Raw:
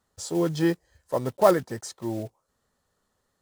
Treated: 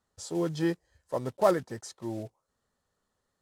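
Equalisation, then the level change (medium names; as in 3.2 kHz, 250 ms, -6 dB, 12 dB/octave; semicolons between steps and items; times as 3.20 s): Bessel low-pass 11 kHz, order 2; -5.0 dB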